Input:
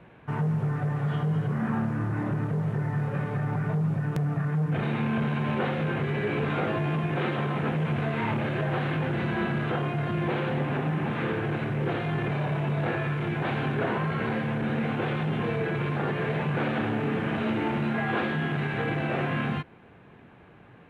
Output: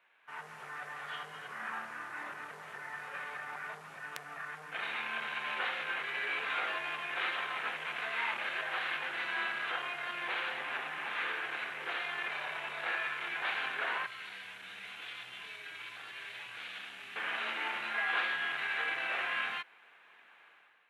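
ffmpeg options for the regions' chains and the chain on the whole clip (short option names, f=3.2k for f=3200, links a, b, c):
-filter_complex "[0:a]asettb=1/sr,asplit=3[a][b][c];[a]atrim=end=14.064[d];[b]atrim=start=14.06:end=17.16,asetpts=PTS-STARTPTS,afade=t=in:d=0.004:c=qsin,afade=t=out:st=3.096:d=0.004:c=qsin,acrossover=split=210|3000[e][f][g];[f]acompressor=threshold=-45dB:ratio=4:attack=3.2:release=140:knee=2.83:detection=peak[h];[e][h][g]amix=inputs=3:normalize=0,afreqshift=-31[i];[c]atrim=start=17.156[j];[d][i]acrossfade=d=0.004:c1=hsin:c2=qsin[k];[k][j]acrossfade=d=0.004:c1=qsin:c2=hsin,highpass=1.5k,dynaudnorm=f=100:g=7:m=10dB,volume=-7.5dB"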